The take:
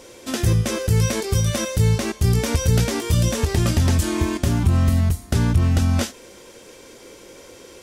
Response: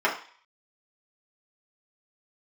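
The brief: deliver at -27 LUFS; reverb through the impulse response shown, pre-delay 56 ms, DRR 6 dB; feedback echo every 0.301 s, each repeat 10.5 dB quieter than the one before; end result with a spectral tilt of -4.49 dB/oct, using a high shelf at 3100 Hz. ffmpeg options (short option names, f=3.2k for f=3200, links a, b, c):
-filter_complex "[0:a]highshelf=f=3.1k:g=8.5,aecho=1:1:301|602|903:0.299|0.0896|0.0269,asplit=2[a][b];[1:a]atrim=start_sample=2205,adelay=56[c];[b][c]afir=irnorm=-1:irlink=0,volume=-22dB[d];[a][d]amix=inputs=2:normalize=0,volume=-8.5dB"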